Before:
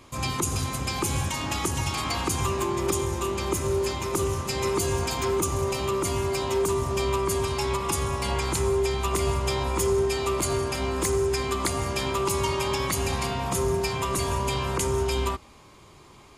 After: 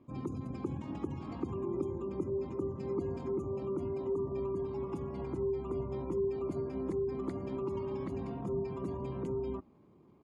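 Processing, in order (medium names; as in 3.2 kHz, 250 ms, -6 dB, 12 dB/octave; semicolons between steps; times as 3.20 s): spectral gate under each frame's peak -25 dB strong; tempo 1.6×; band-pass filter 240 Hz, Q 1.5; trim -2.5 dB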